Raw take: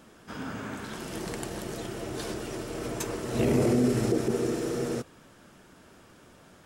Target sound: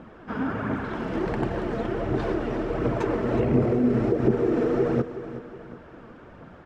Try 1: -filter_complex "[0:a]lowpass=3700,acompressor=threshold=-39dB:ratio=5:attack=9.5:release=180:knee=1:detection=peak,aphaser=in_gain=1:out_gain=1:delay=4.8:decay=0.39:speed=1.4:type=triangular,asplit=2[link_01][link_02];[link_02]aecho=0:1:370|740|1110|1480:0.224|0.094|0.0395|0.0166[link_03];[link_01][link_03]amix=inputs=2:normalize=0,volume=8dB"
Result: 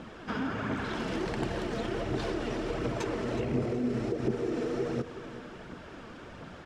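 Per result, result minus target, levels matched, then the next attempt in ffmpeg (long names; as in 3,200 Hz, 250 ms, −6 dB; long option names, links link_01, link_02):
4,000 Hz band +11.5 dB; downward compressor: peak gain reduction +9 dB
-filter_complex "[0:a]lowpass=1700,acompressor=threshold=-39dB:ratio=5:attack=9.5:release=180:knee=1:detection=peak,aphaser=in_gain=1:out_gain=1:delay=4.8:decay=0.39:speed=1.4:type=triangular,asplit=2[link_01][link_02];[link_02]aecho=0:1:370|740|1110|1480:0.224|0.094|0.0395|0.0166[link_03];[link_01][link_03]amix=inputs=2:normalize=0,volume=8dB"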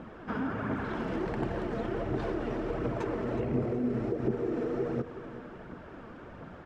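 downward compressor: peak gain reduction +9 dB
-filter_complex "[0:a]lowpass=1700,acompressor=threshold=-28dB:ratio=5:attack=9.5:release=180:knee=1:detection=peak,aphaser=in_gain=1:out_gain=1:delay=4.8:decay=0.39:speed=1.4:type=triangular,asplit=2[link_01][link_02];[link_02]aecho=0:1:370|740|1110|1480:0.224|0.094|0.0395|0.0166[link_03];[link_01][link_03]amix=inputs=2:normalize=0,volume=8dB"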